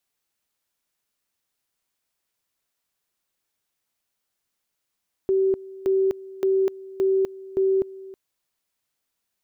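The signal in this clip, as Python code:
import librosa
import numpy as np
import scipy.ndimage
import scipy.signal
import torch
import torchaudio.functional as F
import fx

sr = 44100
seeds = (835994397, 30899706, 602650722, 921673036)

y = fx.two_level_tone(sr, hz=384.0, level_db=-17.0, drop_db=19.5, high_s=0.25, low_s=0.32, rounds=5)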